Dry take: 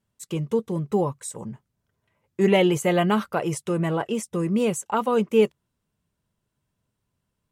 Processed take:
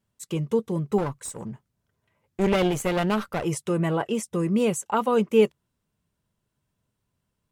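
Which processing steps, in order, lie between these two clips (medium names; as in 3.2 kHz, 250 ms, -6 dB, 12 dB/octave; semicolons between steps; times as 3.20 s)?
0.98–3.45 s: one-sided clip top -32 dBFS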